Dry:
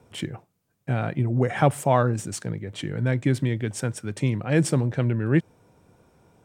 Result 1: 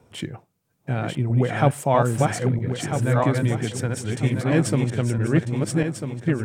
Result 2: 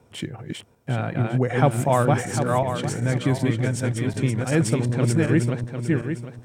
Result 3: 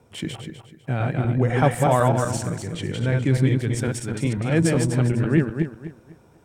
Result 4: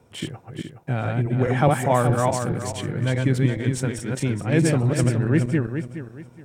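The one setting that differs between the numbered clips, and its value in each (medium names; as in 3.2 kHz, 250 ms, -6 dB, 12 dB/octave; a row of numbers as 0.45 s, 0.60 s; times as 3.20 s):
backward echo that repeats, time: 648 ms, 376 ms, 125 ms, 210 ms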